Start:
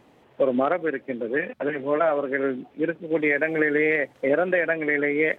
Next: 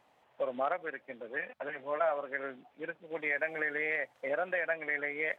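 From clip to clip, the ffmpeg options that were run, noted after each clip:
-af "lowshelf=f=510:t=q:w=1.5:g=-9.5,volume=-9dB"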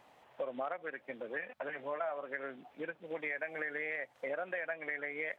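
-af "acompressor=threshold=-45dB:ratio=2.5,volume=5dB"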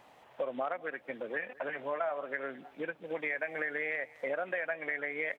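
-af "aecho=1:1:210:0.0794,volume=3.5dB"

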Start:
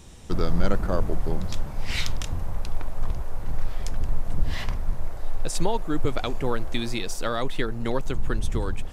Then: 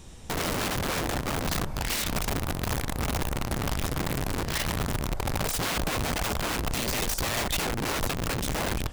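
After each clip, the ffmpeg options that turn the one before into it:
-af "aeval=exprs='(mod(15.8*val(0)+1,2)-1)/15.8':c=same"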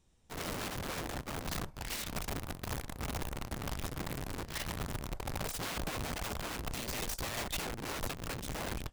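-af "agate=range=-16dB:threshold=-29dB:ratio=16:detection=peak,volume=-8dB"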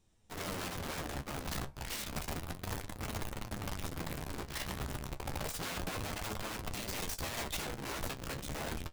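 -af "flanger=delay=9.2:depth=5.9:regen=43:speed=0.31:shape=sinusoidal,volume=3dB"

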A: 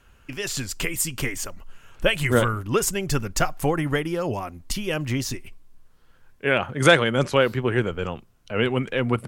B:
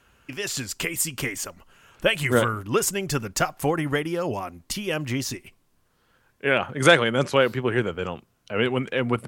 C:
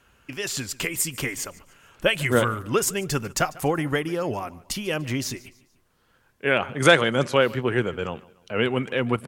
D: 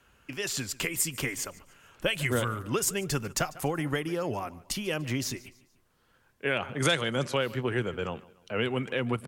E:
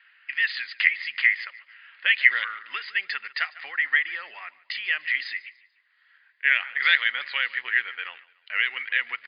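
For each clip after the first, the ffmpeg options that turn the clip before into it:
-af "highpass=f=130:p=1"
-af "aecho=1:1:146|292|438:0.0841|0.0345|0.0141"
-filter_complex "[0:a]acrossover=split=140|3000[a][b][c];[b]acompressor=threshold=-24dB:ratio=3[d];[a][d][c]amix=inputs=3:normalize=0,volume=-3dB"
-af "acrusher=bits=8:mode=log:mix=0:aa=0.000001,highpass=f=1.9k:t=q:w=8.7,volume=1.5dB" -ar 11025 -c:a libmp3lame -b:a 40k

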